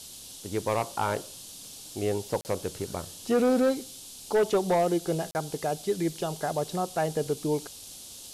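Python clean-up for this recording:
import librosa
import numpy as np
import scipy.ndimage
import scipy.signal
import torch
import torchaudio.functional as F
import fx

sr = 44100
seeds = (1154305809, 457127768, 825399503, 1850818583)

y = fx.fix_declip(x, sr, threshold_db=-18.5)
y = fx.fix_declick_ar(y, sr, threshold=6.5)
y = fx.fix_interpolate(y, sr, at_s=(2.41, 5.31), length_ms=39.0)
y = fx.noise_reduce(y, sr, print_start_s=7.68, print_end_s=8.18, reduce_db=27.0)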